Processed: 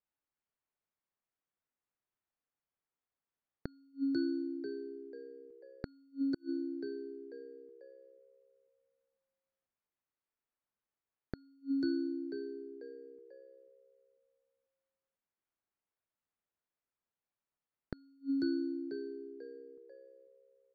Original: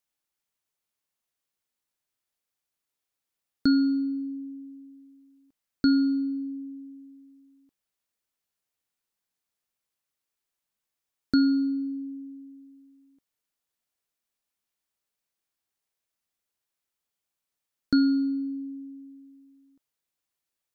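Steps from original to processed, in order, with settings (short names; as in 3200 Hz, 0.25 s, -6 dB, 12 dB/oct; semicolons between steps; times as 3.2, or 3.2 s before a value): frequency-shifting echo 0.492 s, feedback 44%, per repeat +66 Hz, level -12 dB; low-pass opened by the level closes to 1800 Hz, open at -24 dBFS; flipped gate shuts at -20 dBFS, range -37 dB; gain -3.5 dB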